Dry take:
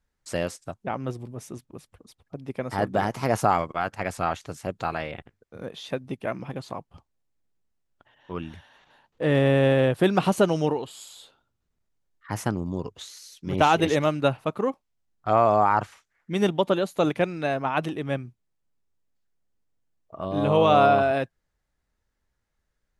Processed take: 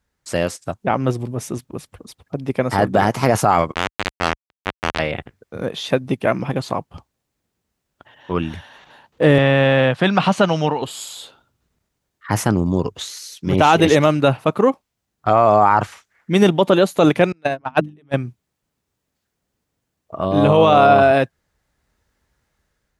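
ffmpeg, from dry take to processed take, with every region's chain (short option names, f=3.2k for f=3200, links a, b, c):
-filter_complex "[0:a]asettb=1/sr,asplit=3[a][b][c];[a]atrim=end=3.744[d];[b]atrim=start=3.74:end=4.99,asetpts=PTS-STARTPTS,afade=t=in:d=0.004:c=qsin,afade=t=out:st=1.246:d=0.004:c=qsin,bandreject=f=60:t=h:w=6,bandreject=f=120:t=h:w=6,bandreject=f=180:t=h:w=6,acrusher=bits=2:mix=0:aa=0.5[e];[c]atrim=start=4.986[f];[d][e]acrossfade=d=0.004:c1=hsin:c2=qsin[g];[g][f]acrossfade=d=0.004:c1=qsin:c2=hsin,asettb=1/sr,asplit=3[h][i][j];[h]atrim=end=9.384[k];[i]atrim=start=9.38:end=10.82,asetpts=PTS-STARTPTS,afade=t=in:d=0.004:c=qsin,afade=t=out:st=1.436:d=0.004:c=qsin,highpass=160,lowpass=4.6k,equalizer=f=370:t=o:w=1.1:g=-11.5[l];[j]atrim=start=10.816[m];[k][l]acrossfade=d=0.004:c1=hsin:c2=qsin[n];[n][m]acrossfade=d=0.004:c1=qsin:c2=hsin,asettb=1/sr,asplit=3[o][p][q];[o]atrim=end=17.324[r];[p]atrim=start=17.32:end=18.14,asetpts=PTS-STARTPTS,afade=t=in:d=0.004:c=qsin,afade=t=out:st=0.816:d=0.004:c=qsin,agate=range=-40dB:threshold=-23dB:ratio=16:release=100:detection=peak,bandreject=f=50:t=h:w=6,bandreject=f=100:t=h:w=6,bandreject=f=150:t=h:w=6,bandreject=f=200:t=h:w=6,bandreject=f=250:t=h:w=6,bandreject=f=300:t=h:w=6,acontrast=83[s];[q]atrim=start=18.136[t];[r][s]acrossfade=d=0.004:c1=hsin:c2=qsin[u];[u][t]acrossfade=d=0.004:c1=qsin:c2=hsin,highpass=48,dynaudnorm=f=270:g=5:m=5.5dB,alimiter=limit=-9.5dB:level=0:latency=1:release=14,volume=6.5dB"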